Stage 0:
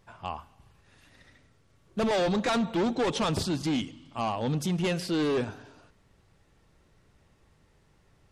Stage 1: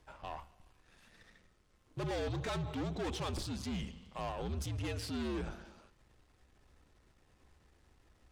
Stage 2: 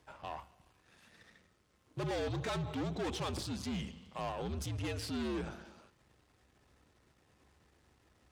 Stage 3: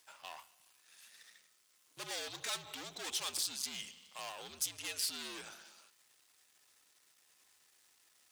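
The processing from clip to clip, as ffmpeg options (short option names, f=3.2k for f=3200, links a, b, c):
-af "aeval=exprs='if(lt(val(0),0),0.447*val(0),val(0))':c=same,alimiter=level_in=6.5dB:limit=-24dB:level=0:latency=1:release=39,volume=-6.5dB,afreqshift=-69,volume=-1dB"
-af "highpass=78,volume=1dB"
-af "aderivative,volume=11dB"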